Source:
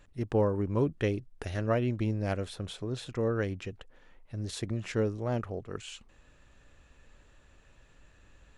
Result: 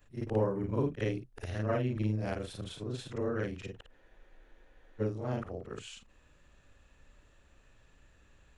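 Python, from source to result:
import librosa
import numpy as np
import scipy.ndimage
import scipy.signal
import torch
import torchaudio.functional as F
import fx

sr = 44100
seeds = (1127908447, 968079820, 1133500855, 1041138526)

y = fx.frame_reverse(x, sr, frame_ms=112.0)
y = fx.spec_freeze(y, sr, seeds[0], at_s=3.95, hold_s=1.06)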